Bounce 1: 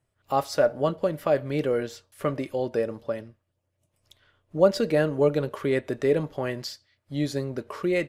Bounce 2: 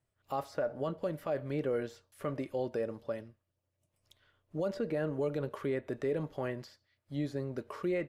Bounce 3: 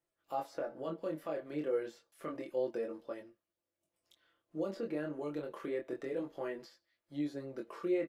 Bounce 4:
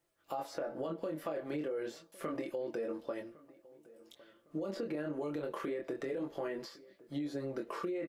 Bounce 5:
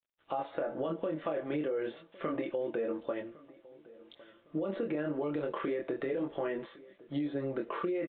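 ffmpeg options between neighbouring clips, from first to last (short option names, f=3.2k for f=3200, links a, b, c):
-filter_complex "[0:a]acrossover=split=2200[a][b];[a]alimiter=limit=-18dB:level=0:latency=1[c];[b]acompressor=threshold=-50dB:ratio=6[d];[c][d]amix=inputs=2:normalize=0,volume=-6.5dB"
-af "lowshelf=f=190:t=q:w=1.5:g=-10,aecho=1:1:5.9:0.53,flanger=delay=20:depth=7:speed=0.29,volume=-2dB"
-filter_complex "[0:a]alimiter=level_in=9.5dB:limit=-24dB:level=0:latency=1:release=59,volume=-9.5dB,acompressor=threshold=-42dB:ratio=6,asplit=2[a][b];[b]adelay=1108,lowpass=f=2k:p=1,volume=-21dB,asplit=2[c][d];[d]adelay=1108,lowpass=f=2k:p=1,volume=0.39,asplit=2[e][f];[f]adelay=1108,lowpass=f=2k:p=1,volume=0.39[g];[a][c][e][g]amix=inputs=4:normalize=0,volume=8dB"
-af "acrusher=bits=11:mix=0:aa=0.000001,aresample=8000,aresample=44100,volume=4dB"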